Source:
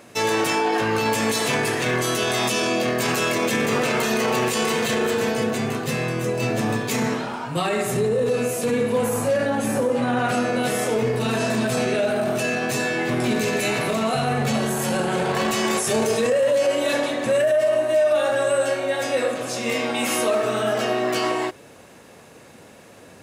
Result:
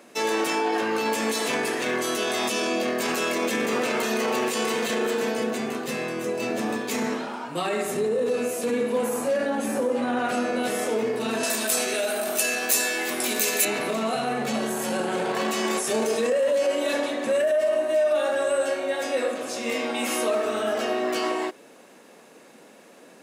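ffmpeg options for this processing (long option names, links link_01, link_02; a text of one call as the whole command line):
ffmpeg -i in.wav -filter_complex "[0:a]asettb=1/sr,asplit=3[link_01][link_02][link_03];[link_01]atrim=end=11.434[link_04];[link_02]atrim=start=11.43:end=13.65,asetpts=PTS-STARTPTS,afade=type=in:duration=0.004:curve=qsin,afade=type=out:start_time=2.216:duration=0.004:curve=qsin,aemphasis=mode=production:type=riaa[link_05];[link_03]atrim=start=13.646[link_06];[link_04][link_05]acrossfade=duration=0.004:curve1=hsin:curve2=qsin[link_07];[link_07][link_06]acrossfade=duration=0.004:curve1=qsin:curve2=hsin,highpass=frequency=210:width=0.5412,highpass=frequency=210:width=1.3066,lowshelf=frequency=410:gain=2.5,volume=-4dB" out.wav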